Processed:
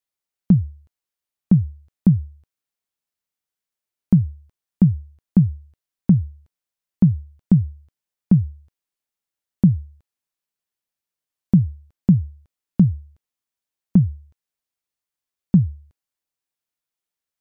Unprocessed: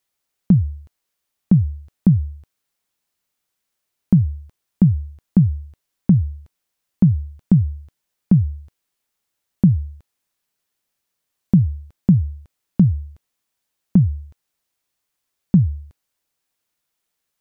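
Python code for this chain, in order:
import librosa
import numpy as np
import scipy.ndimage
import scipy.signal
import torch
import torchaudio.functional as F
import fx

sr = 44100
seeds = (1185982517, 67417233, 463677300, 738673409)

y = fx.upward_expand(x, sr, threshold_db=-30.0, expansion=1.5)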